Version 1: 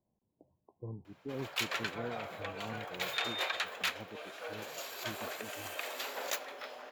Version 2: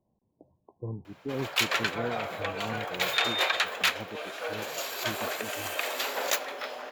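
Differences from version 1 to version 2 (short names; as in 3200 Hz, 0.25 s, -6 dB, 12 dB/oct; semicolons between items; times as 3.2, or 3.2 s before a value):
speech +7.0 dB; background +8.5 dB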